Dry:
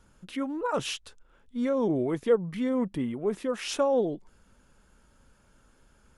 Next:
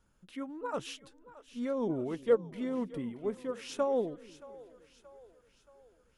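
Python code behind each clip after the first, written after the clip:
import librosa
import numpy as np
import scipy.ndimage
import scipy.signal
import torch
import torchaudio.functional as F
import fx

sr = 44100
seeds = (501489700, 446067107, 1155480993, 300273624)

y = fx.echo_split(x, sr, split_hz=390.0, low_ms=250, high_ms=626, feedback_pct=52, wet_db=-14)
y = fx.upward_expand(y, sr, threshold_db=-34.0, expansion=1.5)
y = y * 10.0 ** (-2.5 / 20.0)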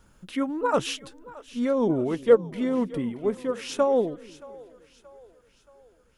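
y = fx.rider(x, sr, range_db=5, speed_s=2.0)
y = y * 10.0 ** (8.5 / 20.0)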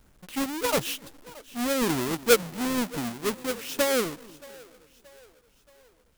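y = fx.halfwave_hold(x, sr)
y = fx.high_shelf(y, sr, hz=5900.0, db=7.0)
y = y * 10.0 ** (-6.5 / 20.0)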